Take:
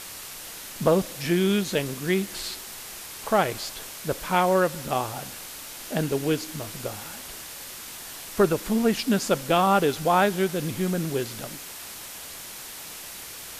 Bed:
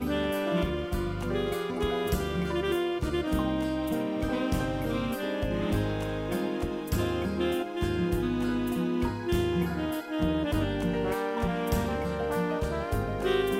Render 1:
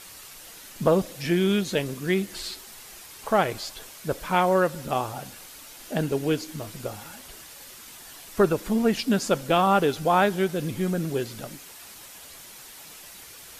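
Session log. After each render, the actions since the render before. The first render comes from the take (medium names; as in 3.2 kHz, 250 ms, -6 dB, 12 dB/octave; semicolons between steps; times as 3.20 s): noise reduction 7 dB, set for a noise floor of -40 dBFS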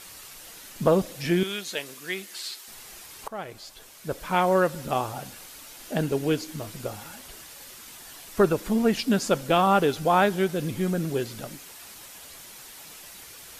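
1.43–2.68 s: high-pass 1.3 kHz 6 dB/octave; 3.28–4.55 s: fade in linear, from -18 dB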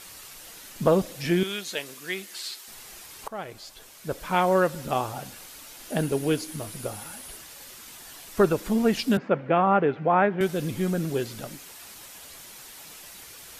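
5.90–7.37 s: peaking EQ 10 kHz +12 dB 0.2 oct; 9.17–10.41 s: Chebyshev band-pass 130–2200 Hz, order 3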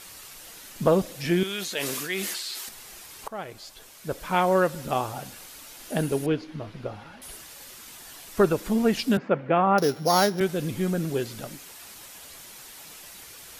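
1.45–2.69 s: decay stretcher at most 22 dB/s; 6.26–7.22 s: distance through air 250 m; 9.78–10.40 s: sorted samples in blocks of 8 samples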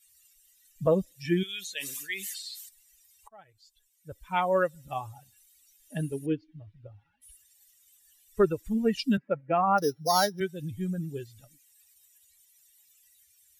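expander on every frequency bin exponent 2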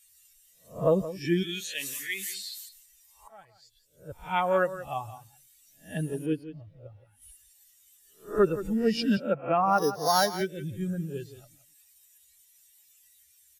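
reverse spectral sustain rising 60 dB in 0.31 s; delay 172 ms -14 dB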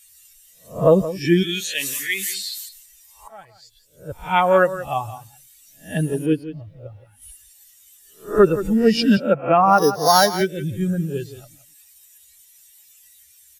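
trim +9.5 dB; peak limiter -3 dBFS, peak gain reduction 1.5 dB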